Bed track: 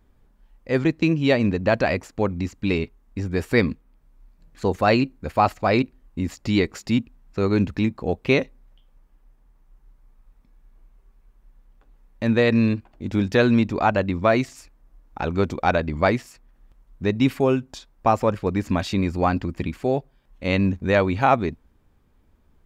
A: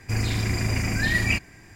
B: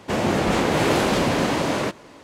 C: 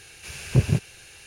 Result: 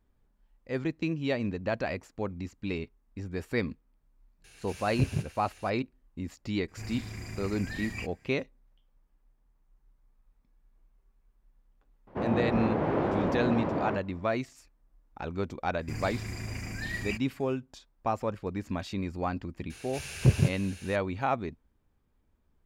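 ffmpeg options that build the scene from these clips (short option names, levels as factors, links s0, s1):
-filter_complex "[3:a]asplit=2[s0][s1];[1:a]asplit=2[s2][s3];[0:a]volume=0.282[s4];[2:a]lowpass=1200[s5];[s0]atrim=end=1.26,asetpts=PTS-STARTPTS,volume=0.355,afade=t=in:d=0.004:c=hsin,afade=t=out:st=1.256:d=0.004:c=hsin,adelay=4440[s6];[s2]atrim=end=1.75,asetpts=PTS-STARTPTS,volume=0.168,afade=t=in:d=0.004:c=hsin,afade=t=out:st=1.746:d=0.004:c=hsin,adelay=6680[s7];[s5]atrim=end=2.23,asetpts=PTS-STARTPTS,volume=0.422,afade=t=in:d=0.004:c=hsin,afade=t=out:st=2.226:d=0.004:c=hsin,adelay=12070[s8];[s3]atrim=end=1.75,asetpts=PTS-STARTPTS,volume=0.237,afade=t=in:d=0.004:c=hsin,afade=t=out:st=1.746:d=0.004:c=hsin,adelay=15790[s9];[s1]atrim=end=1.26,asetpts=PTS-STARTPTS,volume=0.75,afade=t=in:d=0.004:c=hsin,afade=t=out:st=1.256:d=0.004:c=hsin,adelay=19700[s10];[s4][s6][s7][s8][s9][s10]amix=inputs=6:normalize=0"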